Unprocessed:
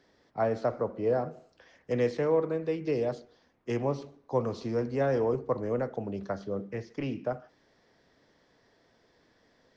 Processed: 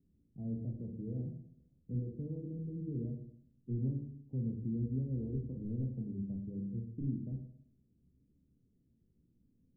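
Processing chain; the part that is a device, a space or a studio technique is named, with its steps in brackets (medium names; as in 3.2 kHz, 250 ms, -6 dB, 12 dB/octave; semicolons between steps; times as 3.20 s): club heard from the street (peak limiter -20.5 dBFS, peak gain reduction 4.5 dB; low-pass 230 Hz 24 dB/octave; reverberation RT60 0.65 s, pre-delay 11 ms, DRR 1 dB)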